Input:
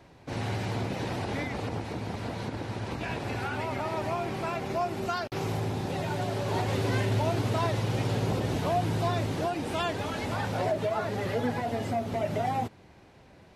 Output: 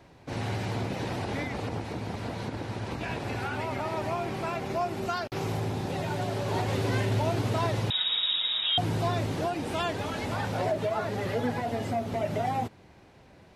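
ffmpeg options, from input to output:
-filter_complex "[0:a]asettb=1/sr,asplit=3[s0][s1][s2];[s0]atrim=end=7.904[s3];[s1]atrim=start=7.9:end=8.78,asetpts=PTS-STARTPTS,afade=t=in:d=0.004:c=qsin,afade=t=out:st=0.876:d=0.004:c=qsin,lowpass=f=3300:t=q:w=0.5098,lowpass=f=3300:t=q:w=0.6013,lowpass=f=3300:t=q:w=0.9,lowpass=f=3300:t=q:w=2.563,afreqshift=-3900[s4];[s2]atrim=start=8.776[s5];[s3][s4]acrossfade=d=0.004:c1=hsin:c2=qsin[s6];[s6][s5]acrossfade=d=0.004:c1=qsin:c2=hsin"

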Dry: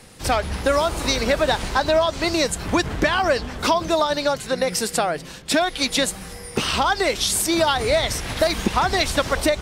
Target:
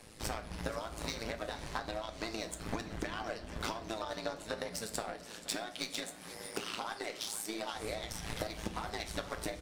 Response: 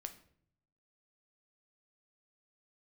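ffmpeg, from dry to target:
-filter_complex "[0:a]tremolo=f=110:d=0.857,acompressor=threshold=0.0224:ratio=20,asettb=1/sr,asplit=3[s0][s1][s2];[s0]atrim=end=5.104[s3];[s1]atrim=start=5.1:end=7.74,asetpts=PTS-STARTPTS,afade=t=in:d=0.004:c=qsin,afade=t=out:st=2.636:d=0.004:c=qsin,highpass=200[s4];[s2]atrim=start=7.736[s5];[s3][s4]acrossfade=d=0.004:c1=hsin:c2=qsin[s6];[s6][s5]acrossfade=d=0.004:c1=qsin:c2=hsin,aecho=1:1:478|956|1434|1912|2390:0.237|0.126|0.0666|0.0353|0.0187,aeval=exprs='0.106*(cos(1*acos(clip(val(0)/0.106,-1,1)))-cos(1*PI/2))+0.0075*(cos(7*acos(clip(val(0)/0.106,-1,1)))-cos(7*PI/2))':c=same[s7];[1:a]atrim=start_sample=2205[s8];[s7][s8]afir=irnorm=-1:irlink=0,volume=1.58"

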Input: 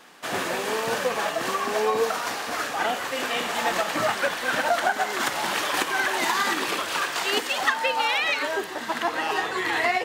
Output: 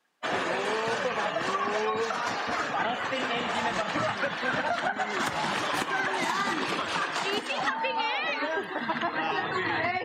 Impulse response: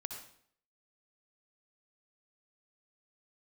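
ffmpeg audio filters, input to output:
-filter_complex "[0:a]afftdn=nr=27:nf=-38,acrossover=split=260|1200[s0][s1][s2];[s0]acompressor=threshold=0.00447:ratio=4[s3];[s1]acompressor=threshold=0.0282:ratio=4[s4];[s2]acompressor=threshold=0.0178:ratio=4[s5];[s3][s4][s5]amix=inputs=3:normalize=0,asubboost=boost=4.5:cutoff=180,volume=1.41"

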